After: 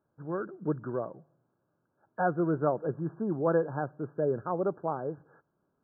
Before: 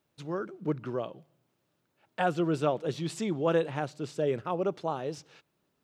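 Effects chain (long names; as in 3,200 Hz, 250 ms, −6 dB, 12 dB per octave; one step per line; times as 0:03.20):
linear-phase brick-wall low-pass 1,700 Hz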